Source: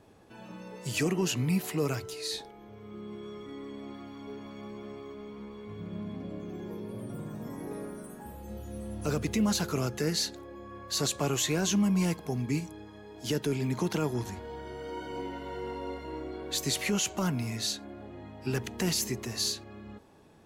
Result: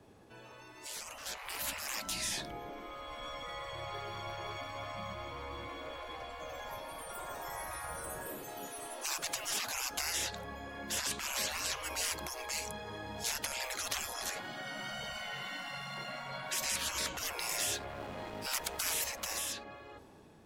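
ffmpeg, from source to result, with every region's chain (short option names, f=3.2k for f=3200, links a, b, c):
-filter_complex "[0:a]asettb=1/sr,asplit=3[a][b][c];[a]atrim=end=1.174[d];[b]atrim=start=1.17:end=3.72,asetpts=PTS-STARTPTS,afade=t=in:d=0.004:c=qsin,afade=t=out:st=2.546:d=0.004:c=qsin,lowshelf=f=160:g=11,asoftclip=type=hard:threshold=-22dB,aeval=exprs='val(0)+0.00178*(sin(2*PI*60*n/s)+sin(2*PI*2*60*n/s)/2+sin(2*PI*3*60*n/s)/3+sin(2*PI*4*60*n/s)/4+sin(2*PI*5*60*n/s)/5)':c=same[e];[c]atrim=start=3.716[f];[d][e]acrossfade=d=0.004:c1=hsin:c2=qsin[g];[g][f]acrossfade=d=0.004:c1=qsin:c2=hsin,asettb=1/sr,asplit=3[h][i][j];[h]atrim=end=17.494[k];[i]atrim=start=17.49:end=19.53,asetpts=PTS-STARTPTS,afade=t=in:d=0.004:c=qsin,afade=t=out:st=2.036:d=0.004:c=qsin,highshelf=f=5.5k:g=9,aeval=exprs='sgn(val(0))*max(abs(val(0))-0.00282,0)':c=same[l];[j]atrim=start=19.526[m];[k][l]acrossfade=d=0.004:c1=hsin:c2=qsin[n];[n][m]acrossfade=d=0.004:c1=qsin:c2=hsin,acrossover=split=95|260|4000[o][p][q][r];[o]acompressor=threshold=-47dB:ratio=4[s];[p]acompressor=threshold=-38dB:ratio=4[t];[q]acompressor=threshold=-34dB:ratio=4[u];[r]acompressor=threshold=-43dB:ratio=4[v];[s][t][u][v]amix=inputs=4:normalize=0,afftfilt=real='re*lt(hypot(re,im),0.0178)':imag='im*lt(hypot(re,im),0.0178)':win_size=1024:overlap=0.75,dynaudnorm=f=460:g=7:m=11.5dB,volume=-1.5dB"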